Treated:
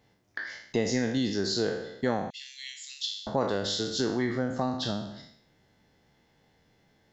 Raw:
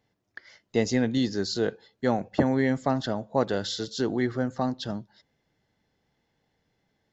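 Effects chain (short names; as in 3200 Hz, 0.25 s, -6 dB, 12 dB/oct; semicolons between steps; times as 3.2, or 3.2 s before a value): spectral trails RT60 0.61 s; 2.3–3.27 steep high-pass 2600 Hz 48 dB/oct; compressor 2:1, threshold -38 dBFS, peak gain reduction 11.5 dB; gain +6 dB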